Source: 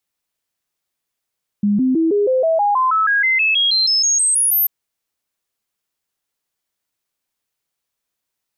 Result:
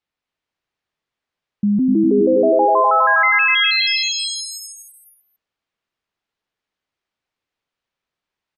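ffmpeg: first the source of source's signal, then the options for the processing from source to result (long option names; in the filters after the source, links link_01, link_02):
-f lavfi -i "aevalsrc='0.237*clip(min(mod(t,0.16),0.16-mod(t,0.16))/0.005,0,1)*sin(2*PI*205*pow(2,floor(t/0.16)/3)*mod(t,0.16))':duration=3.04:sample_rate=44100"
-filter_complex "[0:a]lowpass=3400,asplit=2[link_01][link_02];[link_02]aecho=0:1:250|425|547.5|633.2|693.3:0.631|0.398|0.251|0.158|0.1[link_03];[link_01][link_03]amix=inputs=2:normalize=0"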